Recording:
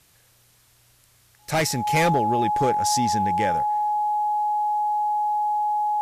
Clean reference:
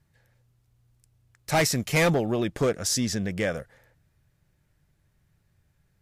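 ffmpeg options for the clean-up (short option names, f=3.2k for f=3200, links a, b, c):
-af "bandreject=f=840:w=30,agate=range=-21dB:threshold=-51dB"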